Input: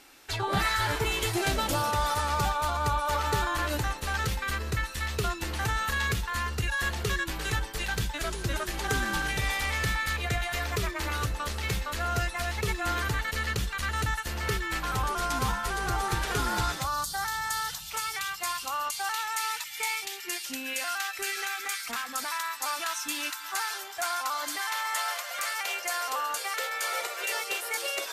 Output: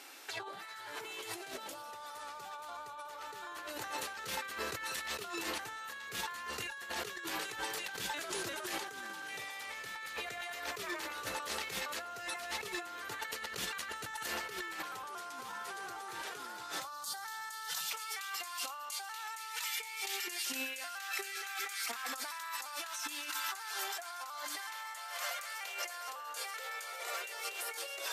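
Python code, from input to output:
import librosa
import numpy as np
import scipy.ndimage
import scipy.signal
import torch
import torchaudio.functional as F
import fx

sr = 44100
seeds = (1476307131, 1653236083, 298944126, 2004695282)

y = scipy.signal.sosfilt(scipy.signal.butter(2, 360.0, 'highpass', fs=sr, output='sos'), x)
y = y + 10.0 ** (-18.5 / 20.0) * np.pad(y, (int(189 * sr / 1000.0), 0))[:len(y)]
y = fx.over_compress(y, sr, threshold_db=-39.0, ratio=-1.0)
y = F.gain(torch.from_numpy(y), -3.5).numpy()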